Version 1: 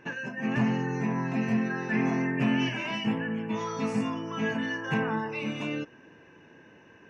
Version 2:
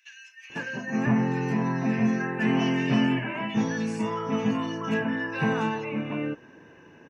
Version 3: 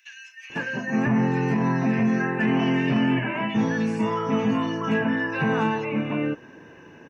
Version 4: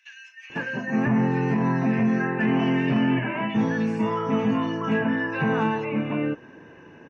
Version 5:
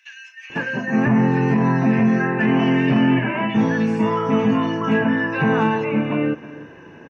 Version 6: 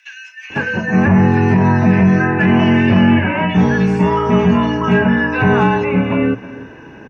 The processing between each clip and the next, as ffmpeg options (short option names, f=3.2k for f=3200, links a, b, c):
-filter_complex "[0:a]acrossover=split=2500[a][b];[a]adelay=500[c];[c][b]amix=inputs=2:normalize=0,volume=3dB"
-filter_complex "[0:a]acrossover=split=3400[a][b];[b]acompressor=threshold=-54dB:ratio=4:attack=1:release=60[c];[a][c]amix=inputs=2:normalize=0,alimiter=limit=-18.5dB:level=0:latency=1:release=21,volume=4.5dB"
-af "lowpass=f=3.4k:p=1"
-af "aecho=1:1:315:0.133,volume=5dB"
-af "afreqshift=-31,bandreject=f=60:t=h:w=6,bandreject=f=120:t=h:w=6,volume=5.5dB"